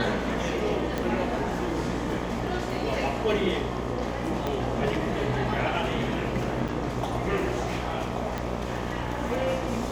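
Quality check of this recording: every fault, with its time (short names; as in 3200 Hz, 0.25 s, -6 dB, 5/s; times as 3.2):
buzz 60 Hz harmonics 21 -33 dBFS
0.98 pop -15 dBFS
4.47 pop -15 dBFS
6.68–6.69 gap 5.5 ms
8.38 pop -16 dBFS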